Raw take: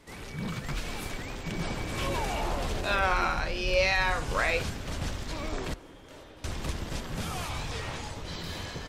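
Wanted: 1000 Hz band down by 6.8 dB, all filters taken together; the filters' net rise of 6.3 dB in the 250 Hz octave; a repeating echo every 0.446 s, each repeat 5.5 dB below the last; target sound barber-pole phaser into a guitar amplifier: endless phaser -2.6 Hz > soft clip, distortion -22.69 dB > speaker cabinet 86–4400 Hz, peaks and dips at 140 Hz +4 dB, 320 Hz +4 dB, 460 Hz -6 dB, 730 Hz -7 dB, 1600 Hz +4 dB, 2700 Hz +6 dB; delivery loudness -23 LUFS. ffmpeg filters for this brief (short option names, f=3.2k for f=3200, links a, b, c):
-filter_complex "[0:a]equalizer=f=250:t=o:g=7.5,equalizer=f=1k:t=o:g=-8.5,aecho=1:1:446|892|1338|1784|2230|2676|3122:0.531|0.281|0.149|0.079|0.0419|0.0222|0.0118,asplit=2[a][b];[b]afreqshift=-2.6[c];[a][c]amix=inputs=2:normalize=1,asoftclip=threshold=-19.5dB,highpass=86,equalizer=f=140:t=q:w=4:g=4,equalizer=f=320:t=q:w=4:g=4,equalizer=f=460:t=q:w=4:g=-6,equalizer=f=730:t=q:w=4:g=-7,equalizer=f=1.6k:t=q:w=4:g=4,equalizer=f=2.7k:t=q:w=4:g=6,lowpass=f=4.4k:w=0.5412,lowpass=f=4.4k:w=1.3066,volume=10dB"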